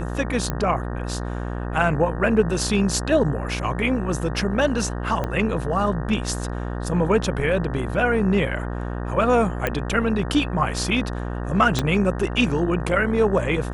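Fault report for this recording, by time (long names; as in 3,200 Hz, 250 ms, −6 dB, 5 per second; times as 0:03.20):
mains buzz 60 Hz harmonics 31 −28 dBFS
0:00.50: click −11 dBFS
0:05.24: click −13 dBFS
0:09.67: click −9 dBFS
0:11.79: click −7 dBFS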